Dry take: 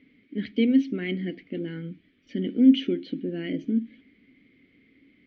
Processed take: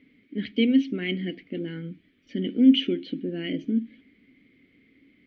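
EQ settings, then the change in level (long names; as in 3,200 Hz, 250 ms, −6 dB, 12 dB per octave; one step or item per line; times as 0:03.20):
dynamic equaliser 2,900 Hz, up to +7 dB, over −51 dBFS, Q 2.1
0.0 dB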